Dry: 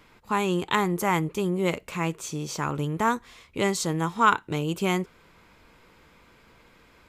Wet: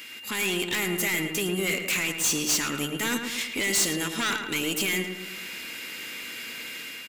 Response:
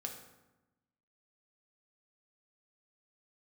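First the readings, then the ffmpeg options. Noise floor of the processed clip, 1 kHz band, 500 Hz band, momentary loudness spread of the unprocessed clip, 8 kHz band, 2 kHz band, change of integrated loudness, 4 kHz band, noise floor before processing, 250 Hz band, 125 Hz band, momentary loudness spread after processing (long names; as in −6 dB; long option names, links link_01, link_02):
−40 dBFS, −11.0 dB, −4.0 dB, 8 LU, +10.5 dB, +4.0 dB, −0.5 dB, +8.5 dB, −57 dBFS, −3.0 dB, −7.5 dB, 12 LU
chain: -filter_complex "[0:a]asoftclip=type=tanh:threshold=-22.5dB,acompressor=threshold=-44dB:ratio=2.5,equalizer=frequency=250:width_type=o:width=1:gain=10,equalizer=frequency=1000:width_type=o:width=1:gain=-11,equalizer=frequency=2000:width_type=o:width=1:gain=6,crystalizer=i=10:c=0,dynaudnorm=framelen=130:gausssize=5:maxgain=6.5dB,asplit=2[link_01][link_02];[link_02]highpass=frequency=720:poles=1,volume=23dB,asoftclip=type=tanh:threshold=-3.5dB[link_03];[link_01][link_03]amix=inputs=2:normalize=0,lowpass=frequency=1900:poles=1,volume=-6dB,aeval=exprs='val(0)+0.0251*sin(2*PI*2800*n/s)':channel_layout=same,agate=range=-13dB:threshold=-19dB:ratio=16:detection=peak,alimiter=limit=-21dB:level=0:latency=1:release=59,highshelf=frequency=6600:gain=12,asplit=2[link_04][link_05];[link_05]adelay=110,lowpass=frequency=2500:poles=1,volume=-6dB,asplit=2[link_06][link_07];[link_07]adelay=110,lowpass=frequency=2500:poles=1,volume=0.53,asplit=2[link_08][link_09];[link_09]adelay=110,lowpass=frequency=2500:poles=1,volume=0.53,asplit=2[link_10][link_11];[link_11]adelay=110,lowpass=frequency=2500:poles=1,volume=0.53,asplit=2[link_12][link_13];[link_13]adelay=110,lowpass=frequency=2500:poles=1,volume=0.53,asplit=2[link_14][link_15];[link_15]adelay=110,lowpass=frequency=2500:poles=1,volume=0.53,asplit=2[link_16][link_17];[link_17]adelay=110,lowpass=frequency=2500:poles=1,volume=0.53[link_18];[link_04][link_06][link_08][link_10][link_12][link_14][link_16][link_18]amix=inputs=8:normalize=0"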